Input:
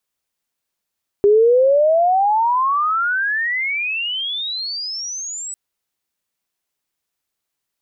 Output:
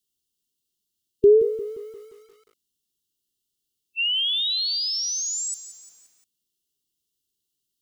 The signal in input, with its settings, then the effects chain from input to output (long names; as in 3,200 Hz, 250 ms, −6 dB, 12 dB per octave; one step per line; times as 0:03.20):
glide logarithmic 400 Hz → 8,000 Hz −8.5 dBFS → −26 dBFS 4.30 s
linear-phase brick-wall band-stop 450–2,700 Hz
feedback echo at a low word length 175 ms, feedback 55%, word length 8 bits, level −13 dB